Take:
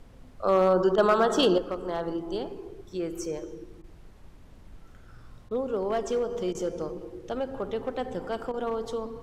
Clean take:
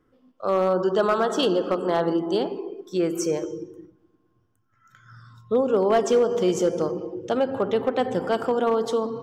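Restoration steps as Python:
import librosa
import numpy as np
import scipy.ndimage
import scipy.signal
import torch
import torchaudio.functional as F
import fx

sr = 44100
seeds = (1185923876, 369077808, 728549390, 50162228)

y = fx.fix_interpolate(x, sr, at_s=(0.96, 3.82, 5.49, 6.53, 8.52), length_ms=17.0)
y = fx.noise_reduce(y, sr, print_start_s=4.1, print_end_s=4.6, reduce_db=15.0)
y = fx.gain(y, sr, db=fx.steps((0.0, 0.0), (1.58, 8.5)))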